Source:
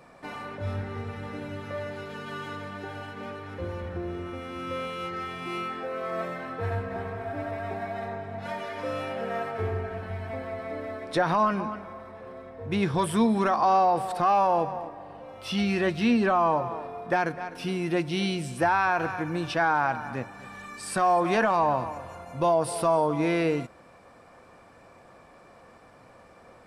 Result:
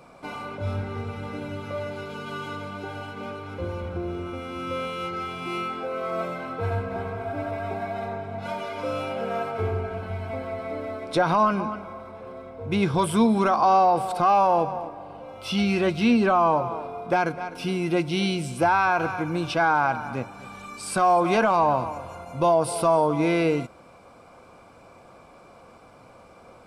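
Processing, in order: Butterworth band-stop 1800 Hz, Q 6.1; gain +3 dB

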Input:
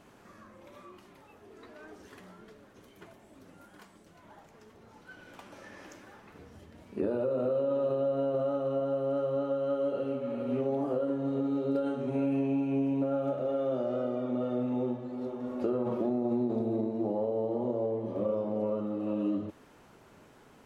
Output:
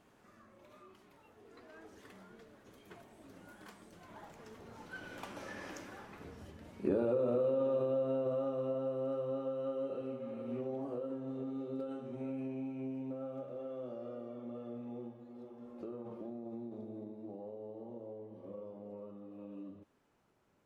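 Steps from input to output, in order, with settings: Doppler pass-by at 5.15, 13 m/s, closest 17 m; gain +3.5 dB

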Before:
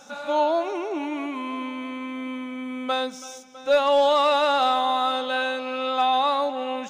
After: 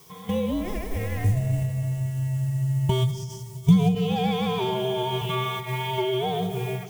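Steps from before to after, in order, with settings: added noise blue -47 dBFS; gate -29 dBFS, range -9 dB; compressor 5:1, threshold -25 dBFS, peak gain reduction 9.5 dB; 1.24–3.95 ten-band EQ 250 Hz +12 dB, 500 Hz +10 dB, 2000 Hz -9 dB, 8000 Hz +8 dB; frequency shift -390 Hz; digital reverb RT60 2.5 s, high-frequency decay 0.45×, pre-delay 30 ms, DRR 9.5 dB; ending taper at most 110 dB/s; gain +2 dB

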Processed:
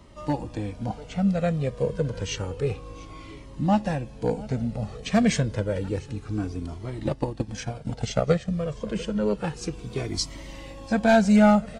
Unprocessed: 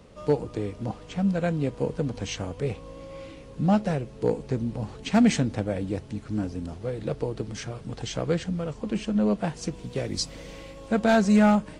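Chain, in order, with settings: 7–8.49 transient shaper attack +7 dB, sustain -7 dB; echo 0.694 s -21 dB; cascading flanger falling 0.29 Hz; gain +5.5 dB

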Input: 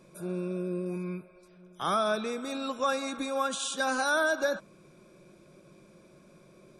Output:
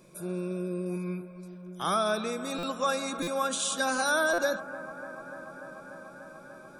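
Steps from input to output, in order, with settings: high shelf 7600 Hz +9 dB; on a send: analogue delay 0.294 s, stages 4096, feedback 85%, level -16 dB; on the sum: stuck buffer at 2.58/3.22/4.33, samples 256, times 8

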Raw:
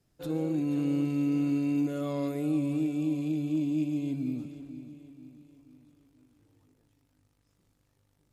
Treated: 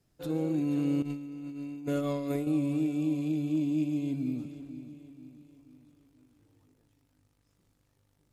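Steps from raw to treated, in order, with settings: 1.02–2.47 negative-ratio compressor -33 dBFS, ratio -0.5

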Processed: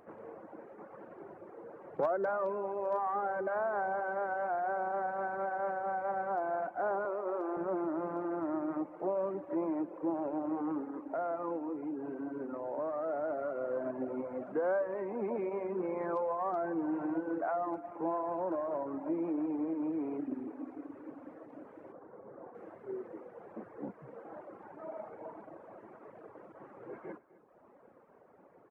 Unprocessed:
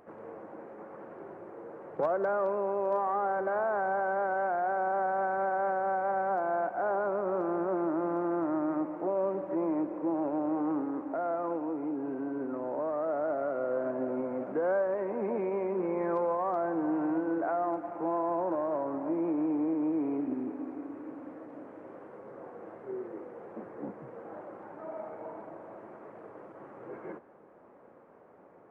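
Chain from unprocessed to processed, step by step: 21.92–22.55 LPF 1500 Hz 12 dB/oct; reverb removal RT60 1.1 s; 7.05–7.57 HPF 300 Hz 24 dB/oct; outdoor echo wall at 44 m, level -18 dB; gain -1.5 dB

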